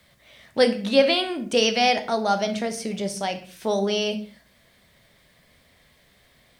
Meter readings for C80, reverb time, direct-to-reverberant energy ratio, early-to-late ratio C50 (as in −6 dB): 17.0 dB, non-exponential decay, 7.0 dB, 12.5 dB